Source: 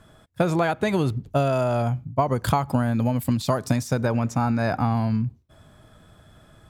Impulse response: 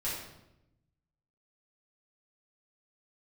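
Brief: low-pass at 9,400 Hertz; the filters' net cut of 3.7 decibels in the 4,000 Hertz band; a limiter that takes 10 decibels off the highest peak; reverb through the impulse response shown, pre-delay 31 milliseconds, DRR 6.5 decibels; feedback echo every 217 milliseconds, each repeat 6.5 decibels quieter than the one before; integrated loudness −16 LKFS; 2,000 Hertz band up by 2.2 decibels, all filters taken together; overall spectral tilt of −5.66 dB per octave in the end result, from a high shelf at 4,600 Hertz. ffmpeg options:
-filter_complex "[0:a]lowpass=9400,equalizer=frequency=2000:width_type=o:gain=4.5,equalizer=frequency=4000:width_type=o:gain=-3.5,highshelf=frequency=4600:gain=-4.5,alimiter=limit=-16dB:level=0:latency=1,aecho=1:1:217|434|651|868|1085|1302:0.473|0.222|0.105|0.0491|0.0231|0.0109,asplit=2[link_01][link_02];[1:a]atrim=start_sample=2205,adelay=31[link_03];[link_02][link_03]afir=irnorm=-1:irlink=0,volume=-11dB[link_04];[link_01][link_04]amix=inputs=2:normalize=0,volume=8dB"

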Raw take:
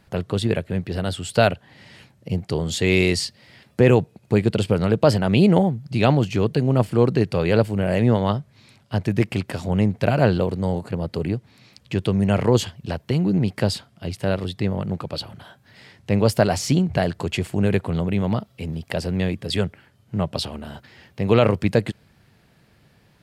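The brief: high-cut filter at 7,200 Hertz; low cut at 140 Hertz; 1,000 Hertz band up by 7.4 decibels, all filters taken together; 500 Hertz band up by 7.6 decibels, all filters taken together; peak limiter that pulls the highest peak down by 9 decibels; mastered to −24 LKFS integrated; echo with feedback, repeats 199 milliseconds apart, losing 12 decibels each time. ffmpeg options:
ffmpeg -i in.wav -af "highpass=140,lowpass=7200,equalizer=frequency=500:width_type=o:gain=7.5,equalizer=frequency=1000:width_type=o:gain=7,alimiter=limit=-6dB:level=0:latency=1,aecho=1:1:199|398|597:0.251|0.0628|0.0157,volume=-4dB" out.wav

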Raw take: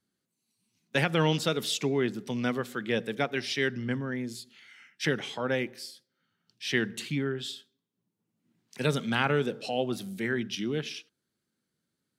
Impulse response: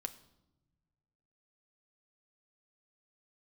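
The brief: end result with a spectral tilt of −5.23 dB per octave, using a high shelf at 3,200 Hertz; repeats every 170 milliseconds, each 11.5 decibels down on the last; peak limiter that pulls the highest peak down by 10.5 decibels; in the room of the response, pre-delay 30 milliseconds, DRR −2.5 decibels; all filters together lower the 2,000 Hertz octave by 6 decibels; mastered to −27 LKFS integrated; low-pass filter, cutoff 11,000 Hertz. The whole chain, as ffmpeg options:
-filter_complex "[0:a]lowpass=11000,equalizer=frequency=2000:width_type=o:gain=-5.5,highshelf=frequency=3200:gain=-7.5,alimiter=level_in=0.5dB:limit=-24dB:level=0:latency=1,volume=-0.5dB,aecho=1:1:170|340|510:0.266|0.0718|0.0194,asplit=2[link_01][link_02];[1:a]atrim=start_sample=2205,adelay=30[link_03];[link_02][link_03]afir=irnorm=-1:irlink=0,volume=4.5dB[link_04];[link_01][link_04]amix=inputs=2:normalize=0,volume=4dB"

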